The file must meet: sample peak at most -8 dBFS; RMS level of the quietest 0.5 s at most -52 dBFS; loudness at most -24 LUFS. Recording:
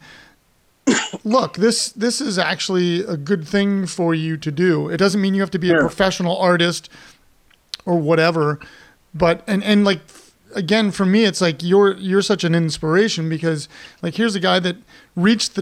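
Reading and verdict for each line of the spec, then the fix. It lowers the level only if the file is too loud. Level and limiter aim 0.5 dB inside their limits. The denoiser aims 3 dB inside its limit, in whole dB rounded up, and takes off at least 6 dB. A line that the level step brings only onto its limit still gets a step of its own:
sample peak -4.5 dBFS: fail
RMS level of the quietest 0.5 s -59 dBFS: pass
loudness -18.0 LUFS: fail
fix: trim -6.5 dB

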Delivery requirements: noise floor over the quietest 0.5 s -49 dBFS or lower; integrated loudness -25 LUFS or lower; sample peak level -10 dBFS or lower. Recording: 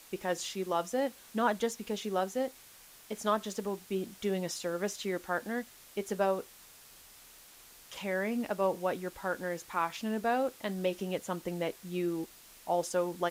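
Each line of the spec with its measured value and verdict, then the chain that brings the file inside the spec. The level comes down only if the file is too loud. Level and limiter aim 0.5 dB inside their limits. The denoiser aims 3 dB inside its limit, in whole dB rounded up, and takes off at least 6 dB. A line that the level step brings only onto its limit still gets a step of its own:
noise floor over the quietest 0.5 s -55 dBFS: pass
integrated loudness -34.0 LUFS: pass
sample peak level -16.5 dBFS: pass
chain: none needed

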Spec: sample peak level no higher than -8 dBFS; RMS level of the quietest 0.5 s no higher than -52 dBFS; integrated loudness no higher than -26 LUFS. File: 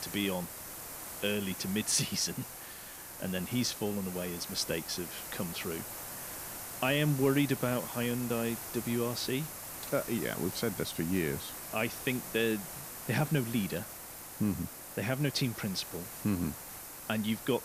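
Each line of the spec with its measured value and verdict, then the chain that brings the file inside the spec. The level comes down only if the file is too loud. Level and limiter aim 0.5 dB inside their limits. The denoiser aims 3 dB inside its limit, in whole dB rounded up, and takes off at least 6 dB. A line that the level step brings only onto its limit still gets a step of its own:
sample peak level -16.0 dBFS: pass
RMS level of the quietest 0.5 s -46 dBFS: fail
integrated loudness -33.5 LUFS: pass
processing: noise reduction 9 dB, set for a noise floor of -46 dBFS

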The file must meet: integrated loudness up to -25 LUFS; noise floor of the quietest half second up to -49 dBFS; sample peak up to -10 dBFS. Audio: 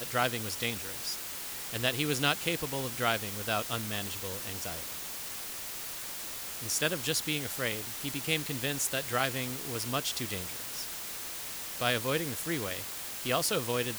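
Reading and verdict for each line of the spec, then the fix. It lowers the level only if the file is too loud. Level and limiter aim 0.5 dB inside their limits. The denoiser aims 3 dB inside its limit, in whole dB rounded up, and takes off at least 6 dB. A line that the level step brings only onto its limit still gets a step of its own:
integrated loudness -32.0 LUFS: pass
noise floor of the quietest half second -40 dBFS: fail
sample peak -11.5 dBFS: pass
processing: noise reduction 12 dB, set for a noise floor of -40 dBFS

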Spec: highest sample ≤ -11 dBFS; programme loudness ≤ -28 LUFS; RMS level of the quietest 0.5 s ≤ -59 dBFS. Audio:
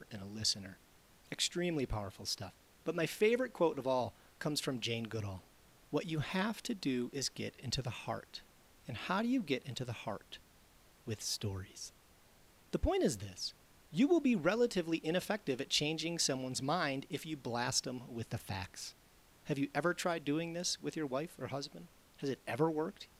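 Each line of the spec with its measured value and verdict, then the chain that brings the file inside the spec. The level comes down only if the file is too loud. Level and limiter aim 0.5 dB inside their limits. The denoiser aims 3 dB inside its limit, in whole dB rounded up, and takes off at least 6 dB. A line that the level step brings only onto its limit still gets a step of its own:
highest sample -20.0 dBFS: pass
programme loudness -37.0 LUFS: pass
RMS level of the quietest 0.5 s -64 dBFS: pass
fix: none needed

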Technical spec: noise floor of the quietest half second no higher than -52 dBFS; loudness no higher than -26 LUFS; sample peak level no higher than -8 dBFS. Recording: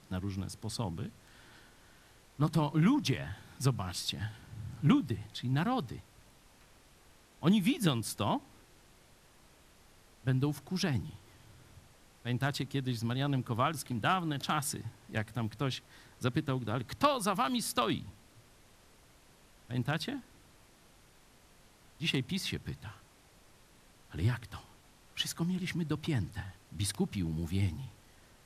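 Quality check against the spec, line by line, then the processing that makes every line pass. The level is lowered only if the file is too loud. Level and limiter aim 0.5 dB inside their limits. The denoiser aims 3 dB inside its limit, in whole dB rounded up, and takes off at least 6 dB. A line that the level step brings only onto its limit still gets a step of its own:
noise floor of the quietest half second -61 dBFS: pass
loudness -34.0 LUFS: pass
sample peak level -13.0 dBFS: pass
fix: none needed

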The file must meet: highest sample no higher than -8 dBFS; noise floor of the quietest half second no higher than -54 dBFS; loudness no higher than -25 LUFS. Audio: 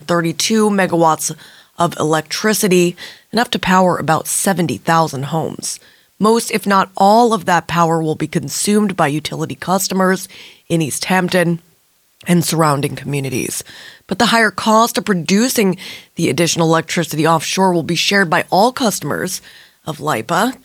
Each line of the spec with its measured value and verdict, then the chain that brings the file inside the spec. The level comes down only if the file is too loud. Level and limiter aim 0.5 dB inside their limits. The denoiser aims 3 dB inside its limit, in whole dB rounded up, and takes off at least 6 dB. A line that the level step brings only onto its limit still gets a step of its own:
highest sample -1.5 dBFS: fail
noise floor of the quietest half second -57 dBFS: pass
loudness -15.5 LUFS: fail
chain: trim -10 dB

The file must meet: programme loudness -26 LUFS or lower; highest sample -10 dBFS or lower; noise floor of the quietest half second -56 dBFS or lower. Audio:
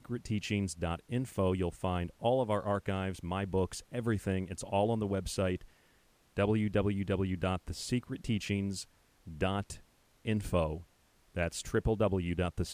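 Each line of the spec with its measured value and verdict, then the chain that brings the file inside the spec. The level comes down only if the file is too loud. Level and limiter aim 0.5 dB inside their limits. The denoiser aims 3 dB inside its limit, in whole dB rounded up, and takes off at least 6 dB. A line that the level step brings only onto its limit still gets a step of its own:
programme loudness -34.0 LUFS: pass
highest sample -16.5 dBFS: pass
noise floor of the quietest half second -67 dBFS: pass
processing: none needed

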